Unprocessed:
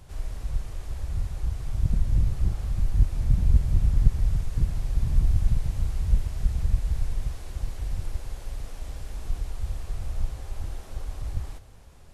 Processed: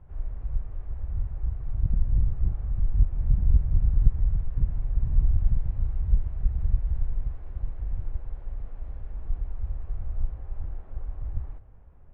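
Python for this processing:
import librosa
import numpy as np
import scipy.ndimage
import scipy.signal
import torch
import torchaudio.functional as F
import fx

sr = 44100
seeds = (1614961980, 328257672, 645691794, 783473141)

y = fx.wiener(x, sr, points=9)
y = scipy.signal.sosfilt(scipy.signal.butter(2, 1700.0, 'lowpass', fs=sr, output='sos'), y)
y = fx.low_shelf(y, sr, hz=99.0, db=7.5)
y = y * librosa.db_to_amplitude(-6.5)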